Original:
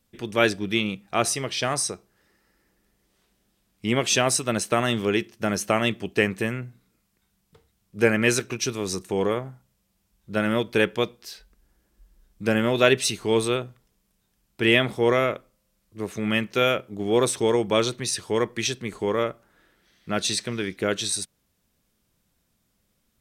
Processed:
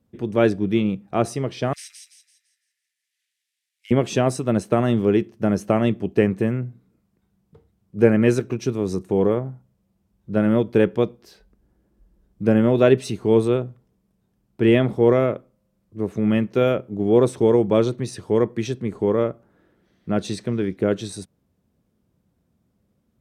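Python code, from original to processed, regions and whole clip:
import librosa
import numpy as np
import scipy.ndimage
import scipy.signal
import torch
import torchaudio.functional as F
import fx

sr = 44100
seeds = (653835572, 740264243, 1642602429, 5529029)

y = fx.chain(x, sr, fx.cvsd(bps=64000),
    fx.steep_highpass(hz=1800.0, slope=48),
    fx.echo_wet_highpass(ms=168, feedback_pct=38, hz=2400.0, wet_db=-4.0), at=(1.73, 3.91))
y = scipy.signal.sosfilt(scipy.signal.butter(2, 71.0, 'highpass', fs=sr, output='sos'), y)
y = fx.tilt_shelf(y, sr, db=10.0, hz=1100.0)
y = y * librosa.db_to_amplitude(-2.0)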